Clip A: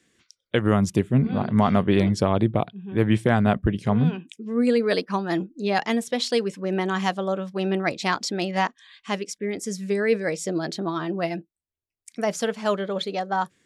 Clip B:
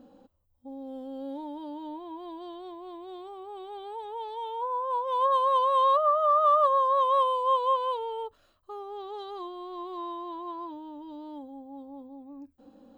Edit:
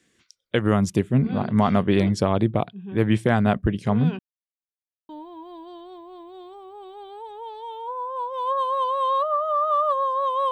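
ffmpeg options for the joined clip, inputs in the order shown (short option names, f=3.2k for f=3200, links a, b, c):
-filter_complex "[0:a]apad=whole_dur=10.51,atrim=end=10.51,asplit=2[a][b];[a]atrim=end=4.19,asetpts=PTS-STARTPTS,afade=t=out:st=4.186:d=0.004:c=hsin[c];[b]atrim=start=4.19:end=5.09,asetpts=PTS-STARTPTS,volume=0[d];[1:a]atrim=start=1.83:end=7.25,asetpts=PTS-STARTPTS,afade=t=in:d=0.004:c=hsin[e];[c][d][e]concat=n=3:v=0:a=1"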